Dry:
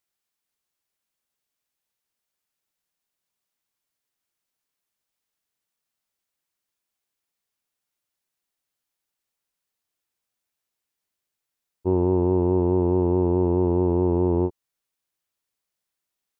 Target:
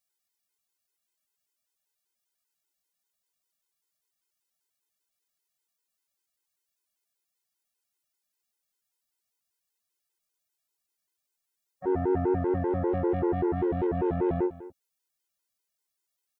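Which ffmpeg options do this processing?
-filter_complex "[0:a]bass=f=250:g=-4,treble=f=4000:g=5,asplit=3[s0][s1][s2];[s1]asetrate=66075,aresample=44100,atempo=0.66742,volume=0.178[s3];[s2]asetrate=88200,aresample=44100,atempo=0.5,volume=0.251[s4];[s0][s3][s4]amix=inputs=3:normalize=0,aeval=exprs='0.335*(cos(1*acos(clip(val(0)/0.335,-1,1)))-cos(1*PI/2))+0.0237*(cos(5*acos(clip(val(0)/0.335,-1,1)))-cos(5*PI/2))':c=same,asplit=2[s5][s6];[s6]aecho=0:1:221:0.15[s7];[s5][s7]amix=inputs=2:normalize=0,afftfilt=real='re*gt(sin(2*PI*5.1*pts/sr)*(1-2*mod(floor(b*sr/1024/270),2)),0)':imag='im*gt(sin(2*PI*5.1*pts/sr)*(1-2*mod(floor(b*sr/1024/270),2)),0)':win_size=1024:overlap=0.75,volume=0.708"

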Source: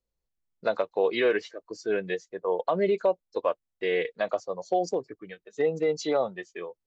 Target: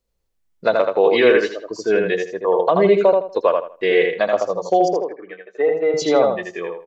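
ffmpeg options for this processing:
-filter_complex "[0:a]asettb=1/sr,asplit=3[s0][s1][s2];[s0]atrim=end=4.884[s3];[s1]atrim=start=4.88:end=5.94,asetpts=PTS-STARTPTS,afade=t=in:d=0.004:c=qsin,afade=t=out:st=1.056:d=0.004:c=qsin,acrossover=split=340 2500:gain=0.1 1 0.0794[s4][s5][s6];[s4][s5][s6]amix=inputs=3:normalize=0[s7];[s2]atrim=start=5.936[s8];[s3][s7]acrossfade=d=0.004:c1=hsin:c2=qsin[s9];[s9][s8]acrossfade=d=0.004:c1=qsin:c2=hsin,asplit=2[s10][s11];[s11]adelay=80,lowpass=f=3800:p=1,volume=0.668,asplit=2[s12][s13];[s13]adelay=80,lowpass=f=3800:p=1,volume=0.26,asplit=2[s14][s15];[s15]adelay=80,lowpass=f=3800:p=1,volume=0.26,asplit=2[s16][s17];[s17]adelay=80,lowpass=f=3800:p=1,volume=0.26[s18];[s10][s12][s14][s16][s18]amix=inputs=5:normalize=0,volume=2.82"

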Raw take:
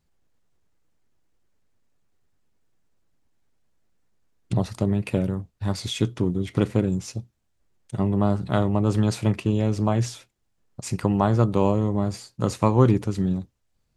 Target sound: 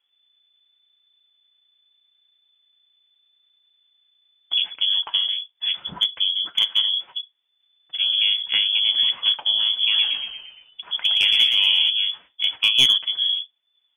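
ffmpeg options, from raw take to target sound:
-filter_complex "[0:a]lowpass=f=3000:t=q:w=0.5098,lowpass=f=3000:t=q:w=0.6013,lowpass=f=3000:t=q:w=0.9,lowpass=f=3000:t=q:w=2.563,afreqshift=-3500,highpass=71,aeval=exprs='clip(val(0),-1,0.299)':c=same,asettb=1/sr,asplit=3[s0][s1][s2];[s0]atrim=end=9.714[s3];[s1]atrim=start=9.71:end=11.9,asetpts=PTS-STARTPTS,afade=t=in:d=0.004:c=qsin,afade=t=out:st=2.186:d=0.004:c=qsin,asplit=7[s4][s5][s6][s7][s8][s9][s10];[s5]adelay=116,afreqshift=-64,volume=0.562[s11];[s6]adelay=232,afreqshift=-128,volume=0.288[s12];[s7]adelay=348,afreqshift=-192,volume=0.146[s13];[s8]adelay=464,afreqshift=-256,volume=0.075[s14];[s9]adelay=580,afreqshift=-320,volume=0.038[s15];[s10]adelay=696,afreqshift=-384,volume=0.0195[s16];[s4][s11][s12][s13][s14][s15][s16]amix=inputs=7:normalize=0,atrim=end_sample=96579[s17];[s2]atrim=start=11.896[s18];[s3][s17]acrossfade=d=0.004:c1=hsin:c2=qsin[s19];[s19][s18]acrossfade=d=0.004:c1=qsin:c2=hsin,flanger=delay=2:depth=5.2:regen=-47:speed=0.8:shape=triangular,volume=1.78"

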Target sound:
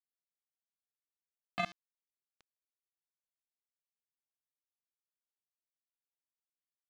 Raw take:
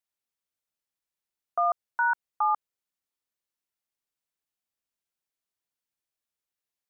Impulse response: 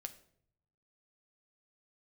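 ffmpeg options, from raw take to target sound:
-filter_complex "[0:a]aeval=exprs='val(0)+0.5*0.0106*sgn(val(0))':c=same,acrossover=split=590|1500[s0][s1][s2];[s0]acompressor=threshold=0.00562:ratio=4[s3];[s1]acompressor=threshold=0.0316:ratio=4[s4];[s2]acompressor=threshold=0.00447:ratio=4[s5];[s3][s4][s5]amix=inputs=3:normalize=0,asplit=3[s6][s7][s8];[s6]bandpass=f=730:t=q:w=8,volume=1[s9];[s7]bandpass=f=1090:t=q:w=8,volume=0.501[s10];[s8]bandpass=f=2440:t=q:w=8,volume=0.355[s11];[s9][s10][s11]amix=inputs=3:normalize=0,equalizer=f=1400:w=7.8:g=-11,aecho=1:1:16|52|71:0.631|0.299|0.708,acrusher=bits=3:mix=0:aa=0.5,volume=3.35"

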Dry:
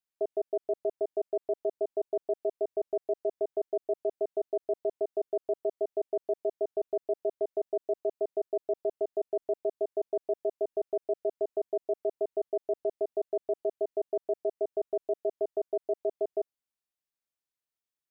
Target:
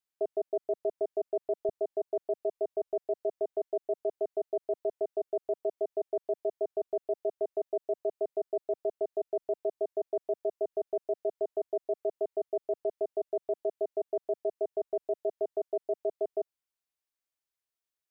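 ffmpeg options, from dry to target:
-af "asetnsamples=n=441:p=0,asendcmd='1.69 equalizer g -13',equalizer=f=200:t=o:w=0.68:g=-7"

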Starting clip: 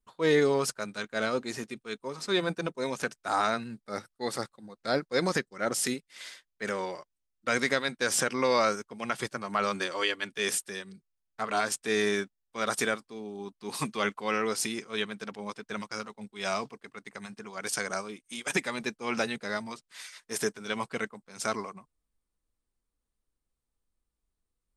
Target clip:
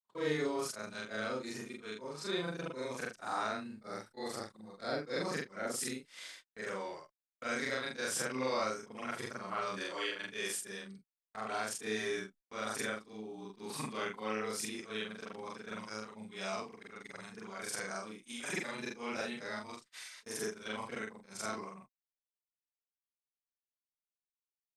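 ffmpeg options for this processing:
-filter_complex "[0:a]afftfilt=real='re':imag='-im':win_size=4096:overlap=0.75,agate=range=0.0126:threshold=0.00178:ratio=16:detection=peak,asplit=2[s0][s1];[s1]acompressor=threshold=0.00631:ratio=6,volume=1.26[s2];[s0][s2]amix=inputs=2:normalize=0,volume=0.501"

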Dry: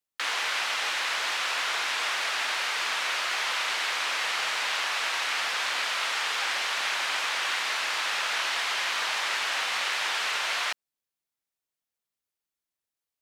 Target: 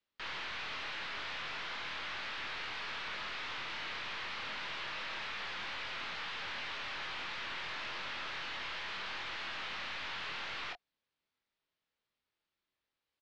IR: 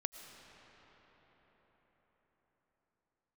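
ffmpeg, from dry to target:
-filter_complex "[0:a]bandreject=f=720:w=12,aeval=exprs='(tanh(200*val(0)+0.25)-tanh(0.25))/200':c=same,lowpass=f=4300:w=0.5412,lowpass=f=4300:w=1.3066,asplit=2[s0][s1];[s1]adelay=24,volume=0.531[s2];[s0][s2]amix=inputs=2:normalize=0,volume=1.78"

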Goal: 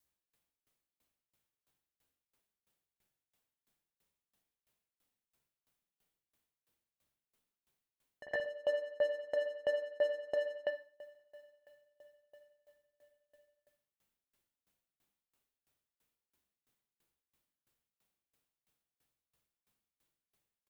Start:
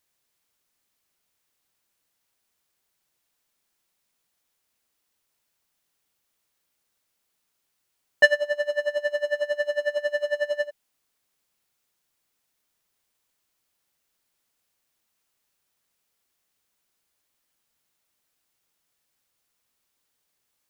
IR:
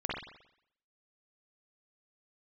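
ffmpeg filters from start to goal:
-filter_complex "[0:a]acompressor=threshold=0.0562:ratio=10,aecho=1:1:976|1952|2928:0.0708|0.0354|0.0177,asettb=1/sr,asplit=3[s0][s1][s2];[s0]atrim=end=8.234[s3];[s1]atrim=start=8.23:end=10.53,asetpts=PTS-STARTPTS,afade=t=in:d=0.004:c=qsin,afade=t=out:st=2.296:d=0.004:c=qsin,aeval=exprs='val(0)+0.00447*sin(2*PI*470*n/s)':c=same[s4];[s2]atrim=start=10.526[s5];[s3][s4]acrossfade=d=0.004:c1=hsin:c2=qsin[s6];[s6][s5]acrossfade=d=0.004:c1=qsin:c2=hsin,equalizer=f=1600:w=0.32:g=-7.5[s7];[1:a]atrim=start_sample=2205[s8];[s7][s8]afir=irnorm=-1:irlink=0,aeval=exprs='val(0)*pow(10,-26*if(lt(mod(3*n/s,1),2*abs(3)/1000),1-mod(3*n/s,1)/(2*abs(3)/1000),(mod(3*n/s,1)-2*abs(3)/1000)/(1-2*abs(3)/1000))/20)':c=same"

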